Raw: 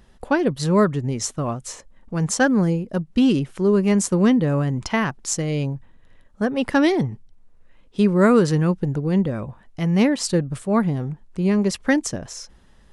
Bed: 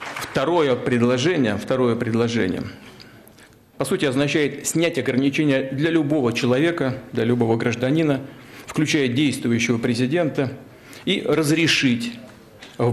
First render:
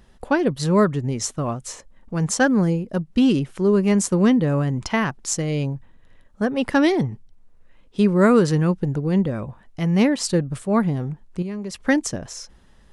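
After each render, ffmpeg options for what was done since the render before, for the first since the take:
-filter_complex "[0:a]asettb=1/sr,asplit=3[a][b][c];[a]atrim=end=11.424[d];[b]atrim=start=11.42:end=11.84,asetpts=PTS-STARTPTS,afade=t=in:d=0.004:c=qsin,afade=t=out:st=0.416:d=0.004:c=qsin,acompressor=threshold=-30dB:ratio=3:attack=3.2:release=140:knee=1:detection=peak[e];[c]atrim=start=11.836[f];[d][e]acrossfade=d=0.004:c1=hsin:c2=qsin[g];[g][f]acrossfade=d=0.004:c1=qsin:c2=hsin"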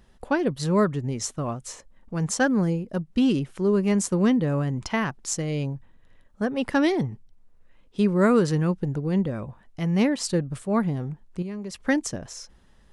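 -af "volume=-4dB"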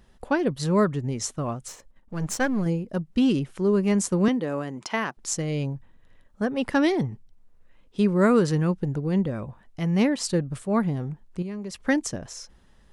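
-filter_complex "[0:a]asettb=1/sr,asplit=3[a][b][c];[a]atrim=end=1.684[d];[b]atrim=start=1.68:end=2.66,asetpts=PTS-STARTPTS,afade=t=in:d=0.004:c=qsin,afade=t=out:st=0.976:d=0.004:c=qsin,aeval=exprs='if(lt(val(0),0),0.447*val(0),val(0))':c=same[e];[c]atrim=start=2.656[f];[d][e]acrossfade=d=0.004:c1=hsin:c2=qsin[g];[g][f]acrossfade=d=0.004:c1=qsin:c2=hsin,asettb=1/sr,asplit=3[h][i][j];[h]atrim=end=4.284[k];[i]atrim=start=4.28:end=5.17,asetpts=PTS-STARTPTS,afade=t=in:d=0.004:c=qsin,afade=t=out:st=0.886:d=0.004:c=qsin,highpass=280[l];[j]atrim=start=5.166[m];[k][l]acrossfade=d=0.004:c1=hsin:c2=qsin[n];[n][m]acrossfade=d=0.004:c1=qsin:c2=hsin"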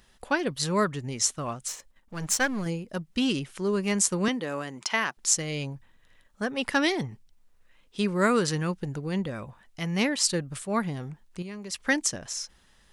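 -af "tiltshelf=f=1.1k:g=-6.5"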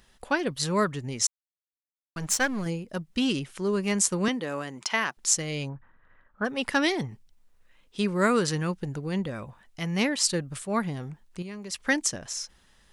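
-filter_complex "[0:a]asplit=3[a][b][c];[a]afade=t=out:st=5.68:d=0.02[d];[b]lowpass=f=1.4k:t=q:w=2.6,afade=t=in:st=5.68:d=0.02,afade=t=out:st=6.44:d=0.02[e];[c]afade=t=in:st=6.44:d=0.02[f];[d][e][f]amix=inputs=3:normalize=0,asplit=3[g][h][i];[g]atrim=end=1.27,asetpts=PTS-STARTPTS,afade=t=out:st=1.266:d=0.004:c=hsin[j];[h]atrim=start=1.27:end=2.16,asetpts=PTS-STARTPTS,volume=0[k];[i]atrim=start=2.16,asetpts=PTS-STARTPTS,afade=t=in:d=0.004:c=hsin[l];[j][k][l]concat=n=3:v=0:a=1"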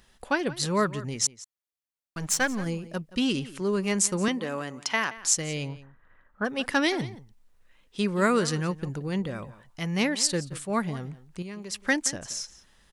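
-filter_complex "[0:a]asplit=2[a][b];[b]adelay=174.9,volume=-17dB,highshelf=f=4k:g=-3.94[c];[a][c]amix=inputs=2:normalize=0"

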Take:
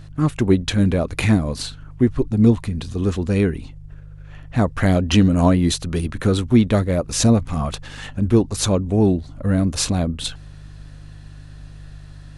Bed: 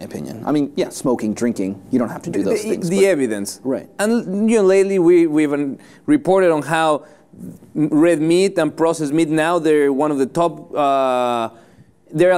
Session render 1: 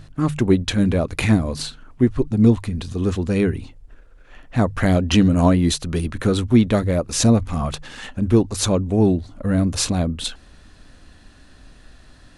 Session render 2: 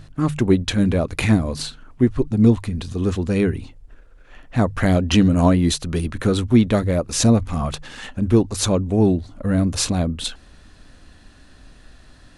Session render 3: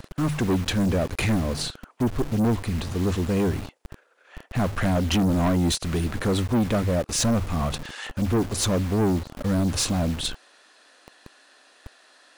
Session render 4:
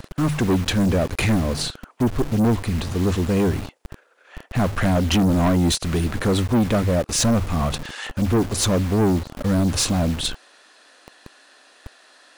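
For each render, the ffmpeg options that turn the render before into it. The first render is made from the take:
-af "bandreject=f=50:t=h:w=4,bandreject=f=100:t=h:w=4,bandreject=f=150:t=h:w=4"
-af anull
-filter_complex "[0:a]acrossover=split=410|1000[a][b][c];[a]acrusher=bits=5:mix=0:aa=0.000001[d];[d][b][c]amix=inputs=3:normalize=0,asoftclip=type=tanh:threshold=-18dB"
-af "volume=3.5dB"

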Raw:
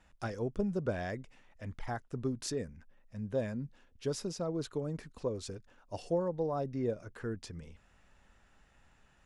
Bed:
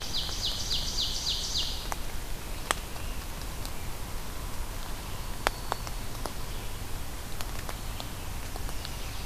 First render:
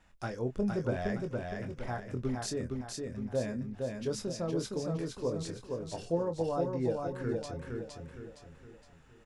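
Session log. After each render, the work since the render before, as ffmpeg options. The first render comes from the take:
-filter_complex "[0:a]asplit=2[a][b];[b]adelay=24,volume=-7.5dB[c];[a][c]amix=inputs=2:normalize=0,asplit=2[d][e];[e]aecho=0:1:464|928|1392|1856|2320:0.668|0.281|0.118|0.0495|0.0208[f];[d][f]amix=inputs=2:normalize=0"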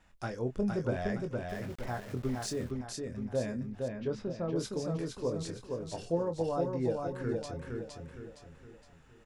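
-filter_complex "[0:a]asettb=1/sr,asplit=3[a][b][c];[a]atrim=end=1.494[d];[b]atrim=start=1.49:end=2.71,asetpts=PTS-STARTPTS,afade=t=in:d=0.004:c=qsin,afade=t=out:st=1.216:d=0.004:c=qsin,aeval=exprs='val(0)*gte(abs(val(0)),0.00473)':c=same[e];[c]atrim=start=2.706[f];[d][e]acrossfade=d=0.004:c1=hsin:c2=qsin[g];[g][f]acrossfade=d=0.004:c1=qsin:c2=hsin,asettb=1/sr,asplit=3[h][i][j];[h]atrim=end=3.884[k];[i]atrim=start=3.88:end=4.56,asetpts=PTS-STARTPTS,afade=t=in:d=0.004:c=qsin,afade=t=out:st=0.676:d=0.004:c=qsin,lowpass=2.6k[l];[j]atrim=start=4.556[m];[k][l]acrossfade=d=0.004:c1=hsin:c2=qsin[n];[n][m]acrossfade=d=0.004:c1=qsin:c2=hsin"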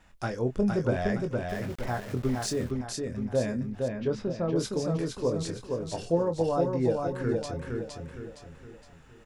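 -af "volume=5.5dB"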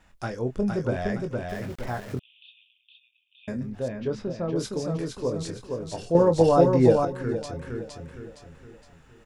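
-filter_complex "[0:a]asettb=1/sr,asplit=3[a][b][c];[a]atrim=end=2.194[d];[b]atrim=start=2.19:end=3.48,asetpts=PTS-STARTPTS,afade=t=in:d=0.004:c=qsin,afade=t=out:st=1.286:d=0.004:c=qsin,asuperpass=centerf=3000:order=12:qfactor=2.7[e];[c]atrim=start=3.476[f];[d][e]acrossfade=d=0.004:c1=hsin:c2=qsin[g];[g][f]acrossfade=d=0.004:c1=qsin:c2=hsin,asplit=3[h][i][j];[h]atrim=end=6.152[k];[i]atrim=start=6.148:end=7.052,asetpts=PTS-STARTPTS,volume=8.5dB[l];[j]atrim=start=7.048[m];[k][l]acrossfade=d=0.004:c1=hsin:c2=hsin[n];[n][m]acrossfade=d=0.004:c1=hsin:c2=hsin"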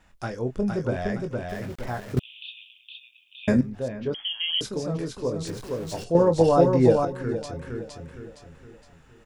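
-filter_complex "[0:a]asettb=1/sr,asplit=3[a][b][c];[a]atrim=end=4.144[d];[b]atrim=start=4.14:end=4.61,asetpts=PTS-STARTPTS,afade=t=in:d=0.004:c=qsin,afade=t=out:st=0.466:d=0.004:c=qsin,lowpass=f=2.9k:t=q:w=0.5098,lowpass=f=2.9k:t=q:w=0.6013,lowpass=f=2.9k:t=q:w=0.9,lowpass=f=2.9k:t=q:w=2.563,afreqshift=-3400[e];[c]atrim=start=4.606[f];[d][e]acrossfade=d=0.004:c1=hsin:c2=qsin[g];[g][f]acrossfade=d=0.004:c1=qsin:c2=hsin,asettb=1/sr,asplit=3[h][i][j];[h]atrim=end=5.474[k];[i]atrim=start=5.47:end=6.04,asetpts=PTS-STARTPTS,afade=t=in:d=0.004:c=qsin,afade=t=out:st=0.566:d=0.004:c=qsin,aeval=exprs='val(0)+0.5*0.0119*sgn(val(0))':c=same[l];[j]atrim=start=6.036[m];[k][l]acrossfade=d=0.004:c1=hsin:c2=qsin[n];[n][m]acrossfade=d=0.004:c1=qsin:c2=hsin,asplit=3[o][p][q];[o]atrim=end=2.172[r];[p]atrim=start=2.168:end=3.612,asetpts=PTS-STARTPTS,volume=12dB[s];[q]atrim=start=3.608[t];[r][s]acrossfade=d=0.004:c1=hsin:c2=hsin[u];[u][t]acrossfade=d=0.004:c1=hsin:c2=hsin"

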